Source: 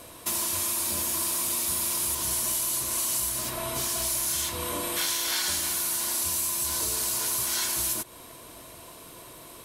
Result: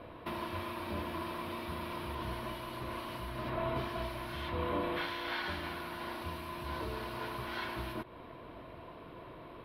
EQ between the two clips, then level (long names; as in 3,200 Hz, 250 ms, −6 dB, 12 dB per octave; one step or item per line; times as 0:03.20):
high-frequency loss of the air 440 metres
parametric band 7,300 Hz −15 dB 0.72 octaves
+1.0 dB